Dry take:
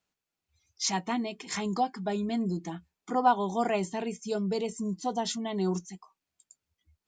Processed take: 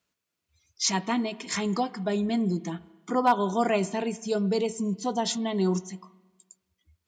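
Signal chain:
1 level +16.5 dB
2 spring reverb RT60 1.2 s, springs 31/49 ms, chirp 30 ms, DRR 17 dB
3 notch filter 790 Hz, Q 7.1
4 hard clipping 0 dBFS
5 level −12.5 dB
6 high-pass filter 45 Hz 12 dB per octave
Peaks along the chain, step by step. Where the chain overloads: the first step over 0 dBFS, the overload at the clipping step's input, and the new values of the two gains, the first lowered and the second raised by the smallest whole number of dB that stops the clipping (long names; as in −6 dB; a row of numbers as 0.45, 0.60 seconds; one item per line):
+4.0, +4.5, +5.0, 0.0, −12.5, −11.5 dBFS
step 1, 5.0 dB
step 1 +11.5 dB, step 5 −7.5 dB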